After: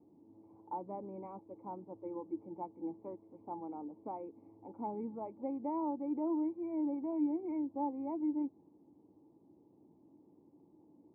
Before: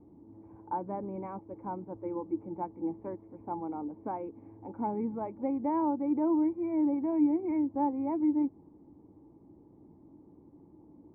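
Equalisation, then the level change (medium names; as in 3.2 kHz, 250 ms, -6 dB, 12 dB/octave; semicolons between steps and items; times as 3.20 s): boxcar filter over 27 samples; high-pass 94 Hz; tilt EQ +3 dB/octave; -1.5 dB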